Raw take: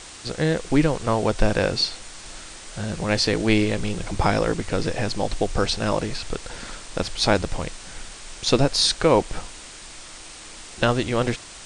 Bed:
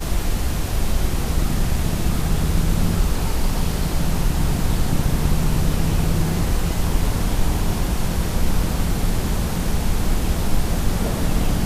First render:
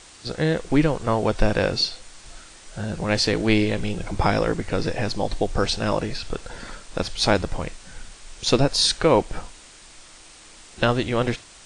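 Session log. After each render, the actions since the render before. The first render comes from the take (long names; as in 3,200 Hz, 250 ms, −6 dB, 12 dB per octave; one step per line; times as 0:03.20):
noise reduction from a noise print 6 dB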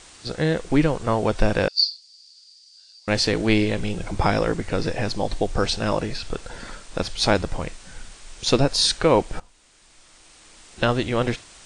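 0:01.68–0:03.08: four-pole ladder band-pass 4,800 Hz, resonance 90%
0:09.40–0:11.00: fade in, from −16 dB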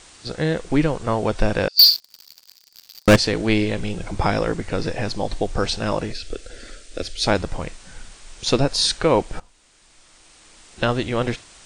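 0:01.79–0:03.16: leveller curve on the samples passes 5
0:06.12–0:07.27: phaser with its sweep stopped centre 390 Hz, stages 4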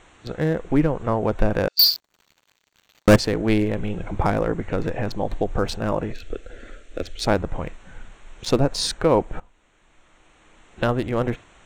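adaptive Wiener filter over 9 samples
dynamic equaliser 3,300 Hz, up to −6 dB, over −37 dBFS, Q 0.75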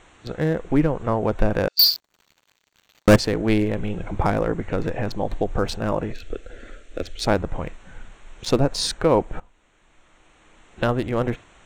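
no processing that can be heard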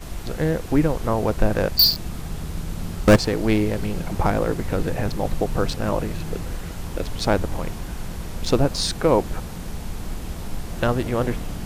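mix in bed −10.5 dB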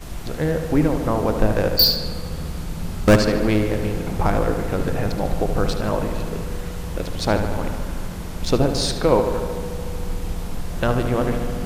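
feedback echo with a low-pass in the loop 74 ms, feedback 75%, low-pass 4,500 Hz, level −8.5 dB
spring reverb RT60 3.4 s, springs 39 ms, chirp 75 ms, DRR 13.5 dB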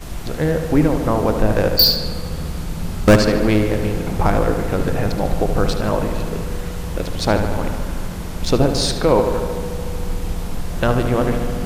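level +3 dB
brickwall limiter −3 dBFS, peak gain reduction 3 dB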